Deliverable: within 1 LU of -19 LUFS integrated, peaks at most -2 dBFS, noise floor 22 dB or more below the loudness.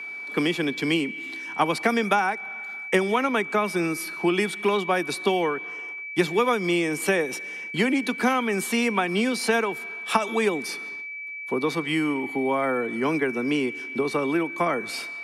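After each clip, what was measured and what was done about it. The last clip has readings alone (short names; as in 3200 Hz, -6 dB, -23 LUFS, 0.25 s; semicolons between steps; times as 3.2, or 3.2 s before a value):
steady tone 2300 Hz; tone level -33 dBFS; loudness -25.0 LUFS; peak -6.0 dBFS; loudness target -19.0 LUFS
-> notch 2300 Hz, Q 30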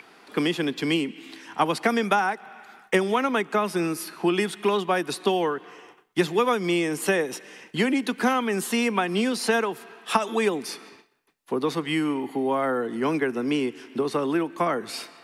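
steady tone none; loudness -25.5 LUFS; peak -6.0 dBFS; loudness target -19.0 LUFS
-> gain +6.5 dB; limiter -2 dBFS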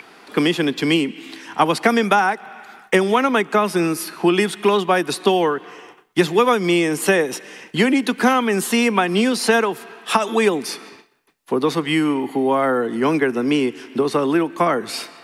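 loudness -19.0 LUFS; peak -2.0 dBFS; noise floor -48 dBFS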